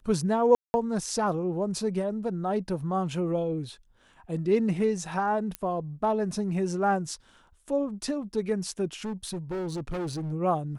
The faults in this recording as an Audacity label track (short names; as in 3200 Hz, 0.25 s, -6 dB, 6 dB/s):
0.550000	0.740000	gap 0.19 s
5.550000	5.550000	pop -16 dBFS
9.040000	10.330000	clipped -29 dBFS